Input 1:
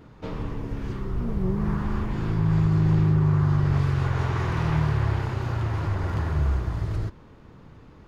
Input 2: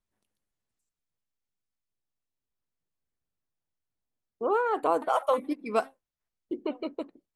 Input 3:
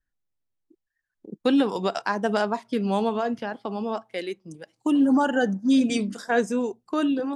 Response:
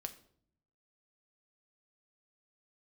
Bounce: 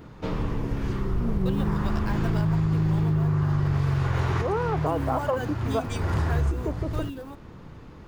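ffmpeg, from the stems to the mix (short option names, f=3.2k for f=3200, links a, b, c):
-filter_complex "[0:a]volume=1.5dB,asplit=2[a][b];[b]volume=-6.5dB[c];[1:a]lowpass=1.2k,volume=1dB,asplit=2[d][e];[2:a]highpass=f=440:p=1,acrusher=bits=6:mode=log:mix=0:aa=0.000001,volume=-8.5dB[f];[e]apad=whole_len=355936[g];[a][g]sidechaincompress=threshold=-41dB:ratio=8:attack=16:release=220[h];[3:a]atrim=start_sample=2205[i];[c][i]afir=irnorm=-1:irlink=0[j];[h][d][f][j]amix=inputs=4:normalize=0,highshelf=f=9.7k:g=5,acompressor=threshold=-20dB:ratio=6"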